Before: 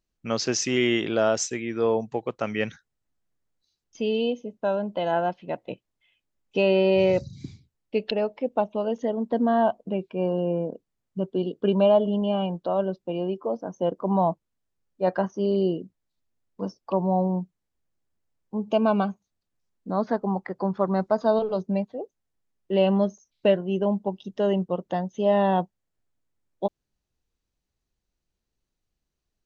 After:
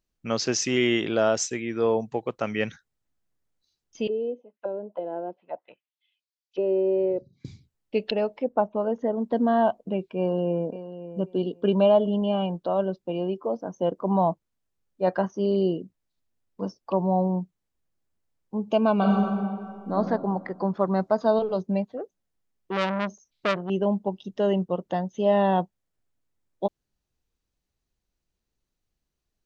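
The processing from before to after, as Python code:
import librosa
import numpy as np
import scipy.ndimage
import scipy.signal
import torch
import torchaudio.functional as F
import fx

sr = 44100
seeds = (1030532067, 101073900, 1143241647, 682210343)

y = fx.auto_wah(x, sr, base_hz=400.0, top_hz=4700.0, q=2.7, full_db=-23.0, direction='down', at=(4.07, 7.45))
y = fx.high_shelf_res(y, sr, hz=2100.0, db=-11.0, q=1.5, at=(8.44, 9.17))
y = fx.echo_throw(y, sr, start_s=10.18, length_s=0.5, ms=540, feedback_pct=15, wet_db=-13.0)
y = fx.reverb_throw(y, sr, start_s=18.95, length_s=0.98, rt60_s=2.0, drr_db=-3.5)
y = fx.transformer_sat(y, sr, knee_hz=1900.0, at=(21.97, 23.7))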